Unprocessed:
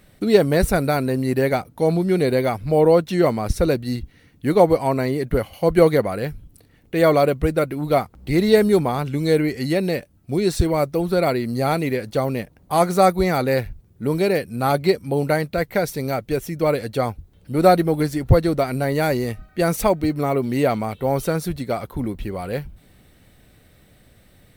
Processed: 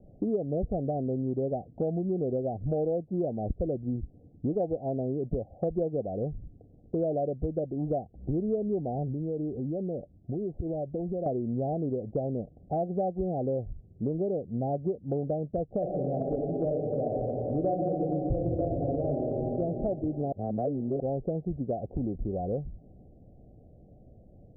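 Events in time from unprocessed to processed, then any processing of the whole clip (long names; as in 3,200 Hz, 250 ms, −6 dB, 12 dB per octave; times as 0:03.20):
0:09.12–0:11.26: downward compressor 4 to 1, threshold −29 dBFS
0:15.77–0:19.59: thrown reverb, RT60 2.7 s, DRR −2.5 dB
0:20.32–0:21.00: reverse
whole clip: Butterworth low-pass 760 Hz 96 dB per octave; downward compressor 5 to 1, threshold −28 dBFS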